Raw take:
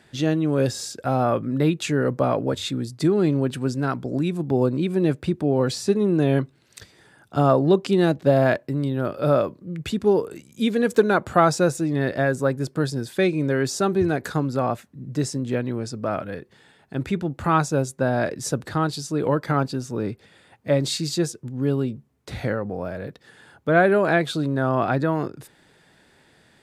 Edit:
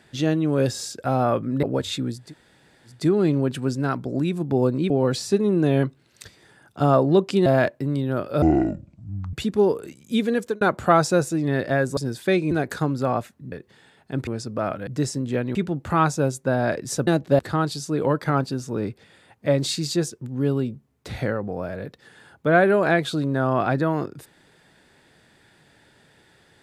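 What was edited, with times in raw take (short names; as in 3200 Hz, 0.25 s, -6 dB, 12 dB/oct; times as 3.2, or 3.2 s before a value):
1.63–2.36 cut
2.95 insert room tone 0.74 s, crossfade 0.24 s
4.89–5.46 cut
8.02–8.34 move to 18.61
9.3–9.81 speed 56%
10.64–11.09 fade out equal-power
12.45–12.88 cut
13.42–14.05 cut
15.06–15.74 swap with 16.34–17.09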